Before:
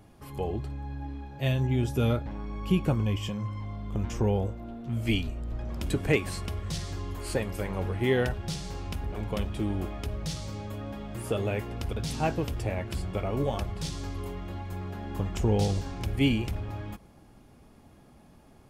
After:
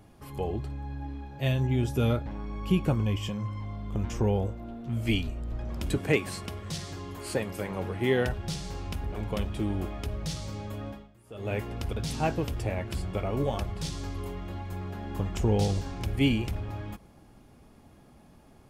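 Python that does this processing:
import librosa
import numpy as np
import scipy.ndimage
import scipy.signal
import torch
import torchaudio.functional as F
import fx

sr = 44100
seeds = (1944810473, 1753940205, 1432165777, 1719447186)

y = fx.highpass(x, sr, hz=110.0, slope=12, at=(5.98, 8.26))
y = fx.edit(y, sr, fx.fade_down_up(start_s=10.88, length_s=0.65, db=-22.0, fade_s=0.29, curve='qua'), tone=tone)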